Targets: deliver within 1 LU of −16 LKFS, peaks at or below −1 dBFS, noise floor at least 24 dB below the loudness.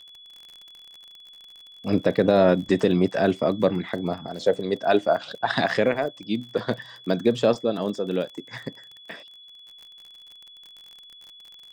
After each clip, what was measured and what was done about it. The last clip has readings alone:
crackle rate 38 per second; interfering tone 3,400 Hz; level of the tone −45 dBFS; integrated loudness −23.5 LKFS; sample peak −5.0 dBFS; target loudness −16.0 LKFS
→ click removal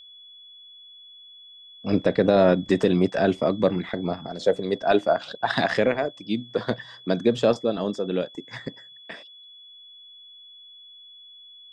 crackle rate 0 per second; interfering tone 3,400 Hz; level of the tone −45 dBFS
→ notch filter 3,400 Hz, Q 30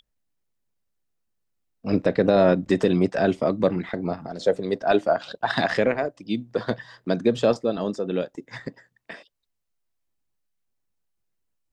interfering tone none found; integrated loudness −23.5 LKFS; sample peak −5.0 dBFS; target loudness −16.0 LKFS
→ level +7.5 dB
brickwall limiter −1 dBFS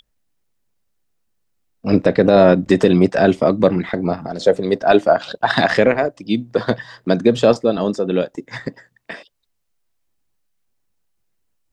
integrated loudness −16.5 LKFS; sample peak −1.0 dBFS; background noise floor −68 dBFS

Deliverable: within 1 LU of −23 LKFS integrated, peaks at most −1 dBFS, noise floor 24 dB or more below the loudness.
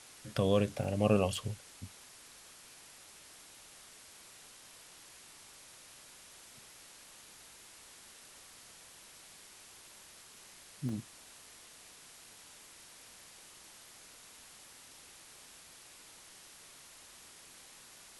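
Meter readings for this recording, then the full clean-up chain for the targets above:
number of dropouts 3; longest dropout 3.2 ms; background noise floor −56 dBFS; target noise floor −58 dBFS; integrated loudness −33.5 LKFS; sample peak −14.0 dBFS; target loudness −23.0 LKFS
→ repair the gap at 0:00.84/0:01.36/0:10.89, 3.2 ms
broadband denoise 6 dB, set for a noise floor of −56 dBFS
level +10.5 dB

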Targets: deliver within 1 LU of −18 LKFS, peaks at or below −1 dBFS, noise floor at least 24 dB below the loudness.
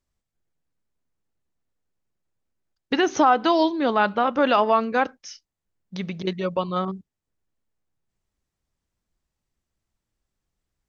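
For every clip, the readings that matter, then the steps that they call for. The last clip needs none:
integrated loudness −22.0 LKFS; sample peak −7.0 dBFS; target loudness −18.0 LKFS
→ level +4 dB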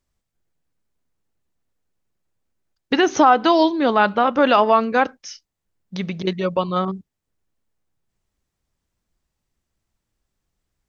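integrated loudness −18.0 LKFS; sample peak −3.0 dBFS; background noise floor −80 dBFS

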